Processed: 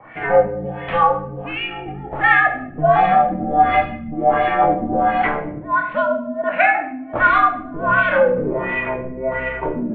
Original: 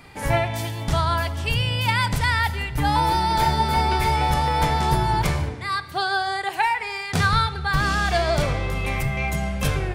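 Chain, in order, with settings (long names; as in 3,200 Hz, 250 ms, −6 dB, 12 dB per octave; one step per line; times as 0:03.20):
0:03.81–0:04.12: time-frequency box erased 370–2,500 Hz
single-sideband voice off tune −140 Hz 270–3,300 Hz
auto-filter low-pass sine 1.4 Hz 250–2,400 Hz
rectangular room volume 98 cubic metres, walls mixed, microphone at 0.64 metres
0:01.32–0:01.87: downward compressor 2 to 1, threshold −29 dBFS, peak gain reduction 6 dB
level +2.5 dB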